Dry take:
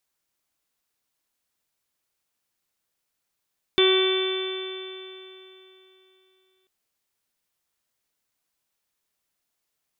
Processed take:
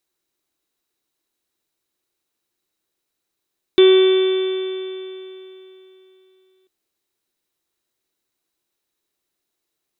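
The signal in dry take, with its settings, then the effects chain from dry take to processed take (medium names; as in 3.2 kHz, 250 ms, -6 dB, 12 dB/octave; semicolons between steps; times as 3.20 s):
stretched partials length 2.89 s, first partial 376 Hz, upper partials -19/-13/-15.5/-17.5/-11/-16/-13/-2.5 dB, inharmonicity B 0.001, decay 3.23 s, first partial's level -16.5 dB
small resonant body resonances 350/3900 Hz, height 12 dB, ringing for 30 ms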